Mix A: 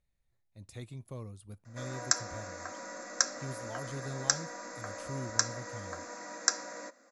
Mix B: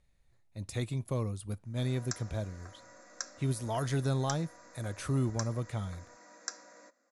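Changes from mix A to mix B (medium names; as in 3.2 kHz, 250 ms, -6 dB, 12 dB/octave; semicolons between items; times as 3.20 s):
speech +10.0 dB; background -12.0 dB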